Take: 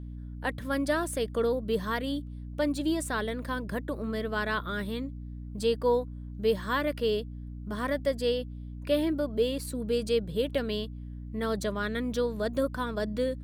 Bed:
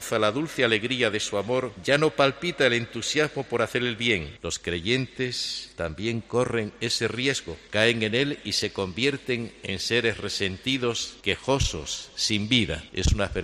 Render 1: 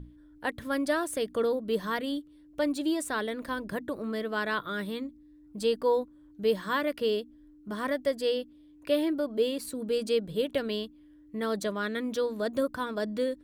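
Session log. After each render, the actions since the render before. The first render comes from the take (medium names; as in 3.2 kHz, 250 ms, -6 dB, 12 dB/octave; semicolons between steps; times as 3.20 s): hum notches 60/120/180/240 Hz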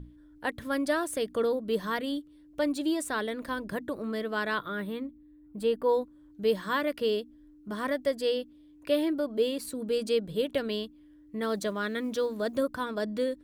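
4.68–5.89 s: peaking EQ 5.8 kHz -15 dB 1.1 oct; 11.43–12.57 s: companded quantiser 8-bit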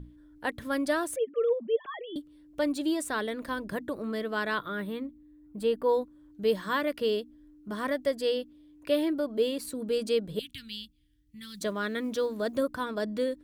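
1.16–2.16 s: formants replaced by sine waves; 10.39–11.61 s: Chebyshev band-stop 120–3200 Hz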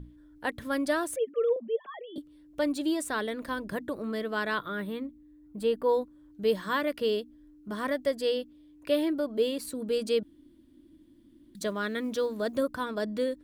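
1.56–2.18 s: rippled Chebyshev high-pass 160 Hz, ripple 6 dB; 10.23–11.55 s: room tone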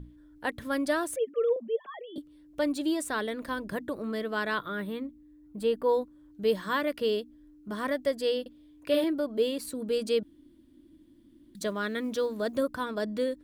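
8.41–9.04 s: doubling 49 ms -4 dB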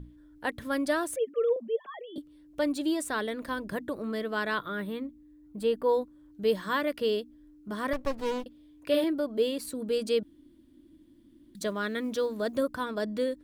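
7.93–8.44 s: sliding maximum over 33 samples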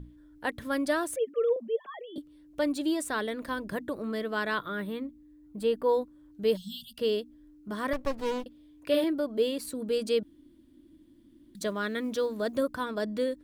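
6.57–6.98 s: spectral selection erased 240–2700 Hz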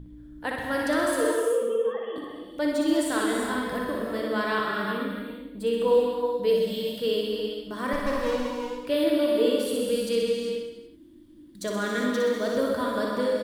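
on a send: reverse bouncing-ball echo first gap 60 ms, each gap 1.1×, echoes 5; on the sum: gated-style reverb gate 430 ms flat, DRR 0 dB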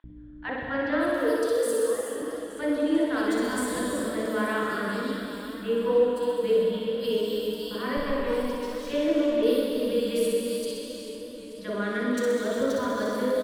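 three bands offset in time mids, lows, highs 40/560 ms, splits 950/3400 Hz; modulated delay 439 ms, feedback 66%, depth 66 cents, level -12 dB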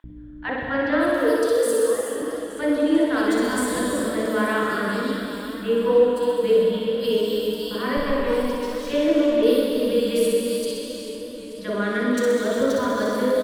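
trim +5 dB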